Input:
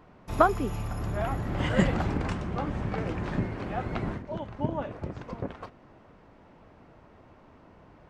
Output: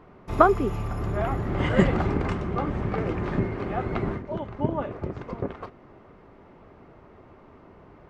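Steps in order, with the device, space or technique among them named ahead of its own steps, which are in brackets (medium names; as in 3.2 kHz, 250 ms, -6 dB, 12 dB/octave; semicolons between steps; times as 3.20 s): inside a helmet (treble shelf 4.2 kHz -9 dB; small resonant body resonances 390/1200/2100 Hz, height 7 dB); trim +3 dB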